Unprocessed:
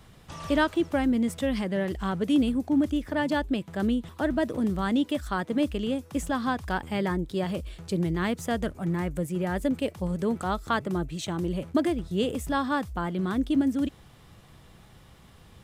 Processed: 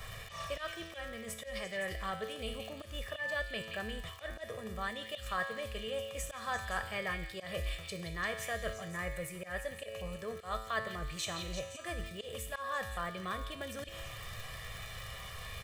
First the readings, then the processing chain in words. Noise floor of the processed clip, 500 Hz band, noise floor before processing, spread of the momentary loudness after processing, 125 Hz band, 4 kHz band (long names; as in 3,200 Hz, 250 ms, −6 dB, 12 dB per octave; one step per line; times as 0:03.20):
−48 dBFS, −10.0 dB, −53 dBFS, 8 LU, −12.0 dB, −3.0 dB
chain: reversed playback
downward compressor 5 to 1, threshold −35 dBFS, peak gain reduction 14.5 dB
reversed playback
tuned comb filter 110 Hz, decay 0.98 s, harmonics all, mix 80%
surface crackle 84 per second −59 dBFS
high-shelf EQ 9,000 Hz +5 dB
comb filter 1.7 ms, depth 70%
speech leveller within 5 dB 0.5 s
octave-band graphic EQ 125/250/2,000 Hz −4/−11/+7 dB
volume swells 127 ms
echo through a band-pass that steps 172 ms, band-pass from 3,200 Hz, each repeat 0.7 octaves, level −4 dB
level +12 dB